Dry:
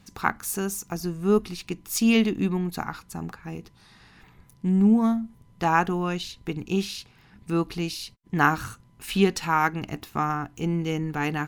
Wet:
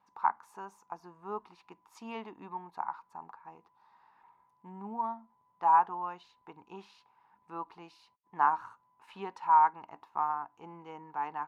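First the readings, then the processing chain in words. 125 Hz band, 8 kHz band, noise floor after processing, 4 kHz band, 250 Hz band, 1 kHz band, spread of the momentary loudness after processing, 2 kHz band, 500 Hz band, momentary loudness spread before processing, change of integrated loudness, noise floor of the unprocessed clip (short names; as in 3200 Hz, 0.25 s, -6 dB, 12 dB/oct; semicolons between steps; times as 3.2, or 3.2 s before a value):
under -25 dB, under -30 dB, -72 dBFS, under -20 dB, -25.5 dB, -0.5 dB, 24 LU, -15.0 dB, -18.0 dB, 15 LU, -6.0 dB, -56 dBFS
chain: band-pass 940 Hz, Q 9.3; gain +5.5 dB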